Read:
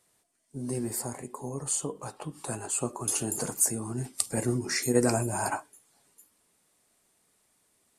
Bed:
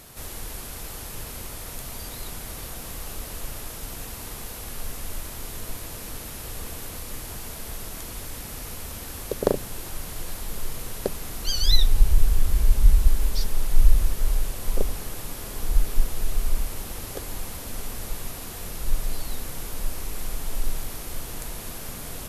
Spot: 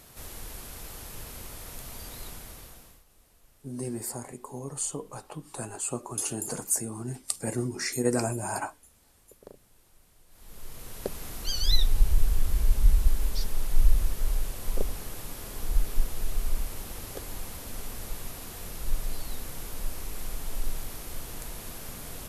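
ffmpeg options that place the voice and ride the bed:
ffmpeg -i stem1.wav -i stem2.wav -filter_complex "[0:a]adelay=3100,volume=-2dB[link_01];[1:a]volume=17dB,afade=type=out:start_time=2.25:duration=0.79:silence=0.0841395,afade=type=in:start_time=10.29:duration=0.94:silence=0.0749894[link_02];[link_01][link_02]amix=inputs=2:normalize=0" out.wav

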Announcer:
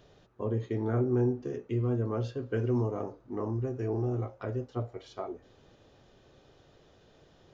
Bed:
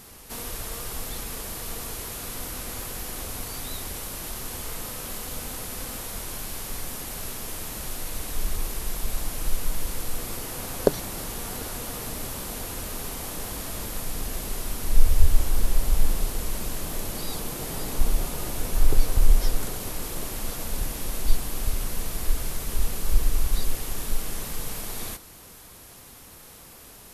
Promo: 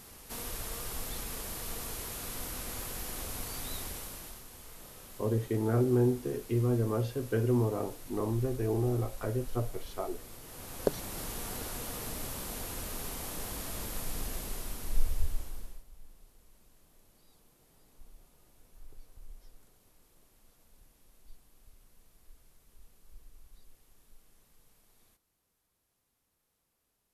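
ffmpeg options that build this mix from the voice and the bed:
ffmpeg -i stem1.wav -i stem2.wav -filter_complex "[0:a]adelay=4800,volume=1dB[link_01];[1:a]volume=5.5dB,afade=type=out:start_time=3.8:duration=0.65:silence=0.281838,afade=type=in:start_time=10.42:duration=0.82:silence=0.298538,afade=type=out:start_time=14.19:duration=1.65:silence=0.0446684[link_02];[link_01][link_02]amix=inputs=2:normalize=0" out.wav

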